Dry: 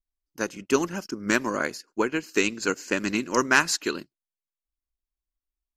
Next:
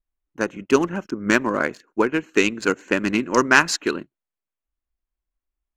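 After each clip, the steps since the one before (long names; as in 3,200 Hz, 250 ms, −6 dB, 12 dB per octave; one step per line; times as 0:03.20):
adaptive Wiener filter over 9 samples
high-shelf EQ 7,500 Hz −8.5 dB
level +5.5 dB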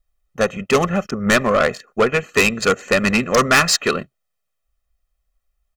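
comb filter 1.6 ms, depth 89%
soft clipping −17 dBFS, distortion −7 dB
level +8 dB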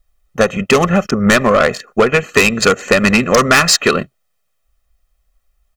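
downward compressor, threshold −17 dBFS, peak gain reduction 6.5 dB
level +9 dB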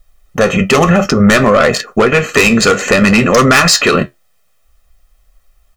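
flanger 0.58 Hz, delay 8.1 ms, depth 5.9 ms, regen −57%
boost into a limiter +16 dB
level −1 dB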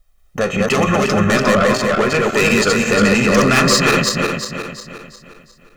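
feedback delay that plays each chunk backwards 178 ms, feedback 64%, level −1.5 dB
level −7.5 dB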